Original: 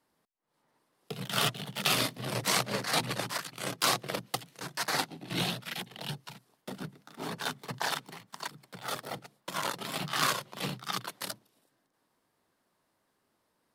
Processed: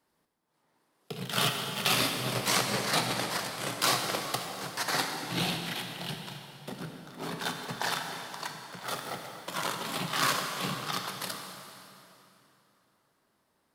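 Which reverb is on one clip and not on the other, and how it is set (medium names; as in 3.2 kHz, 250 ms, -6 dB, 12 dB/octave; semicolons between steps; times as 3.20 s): plate-style reverb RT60 3.1 s, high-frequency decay 0.85×, DRR 2.5 dB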